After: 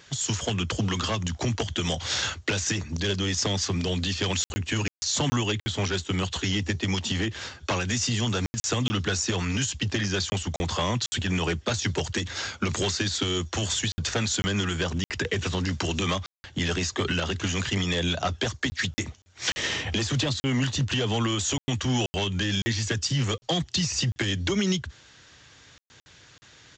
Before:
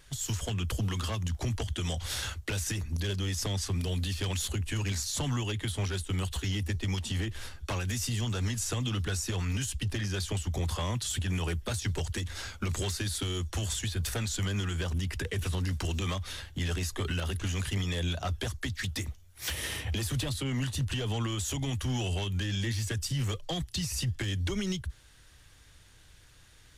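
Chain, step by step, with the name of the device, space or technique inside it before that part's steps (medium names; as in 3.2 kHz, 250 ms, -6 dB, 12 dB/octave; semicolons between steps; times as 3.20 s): call with lost packets (high-pass 140 Hz 12 dB/octave; resampled via 16 kHz; lost packets of 20 ms bursts); trim +8.5 dB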